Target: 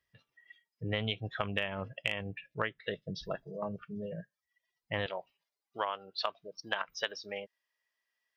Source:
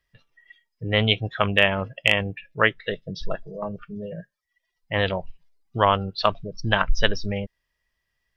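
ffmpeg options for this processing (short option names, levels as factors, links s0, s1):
-af "asetnsamples=n=441:p=0,asendcmd='5.06 highpass f 510',highpass=74,acompressor=threshold=0.0631:ratio=6,volume=0.501"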